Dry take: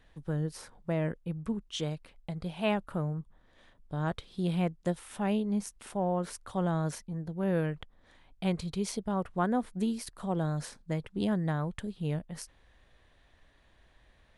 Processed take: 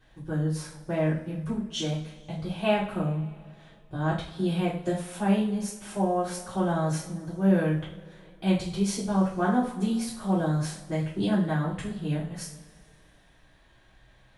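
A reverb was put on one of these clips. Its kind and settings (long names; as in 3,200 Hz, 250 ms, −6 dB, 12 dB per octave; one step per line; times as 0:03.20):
coupled-rooms reverb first 0.44 s, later 2.5 s, from −22 dB, DRR −9.5 dB
level −5 dB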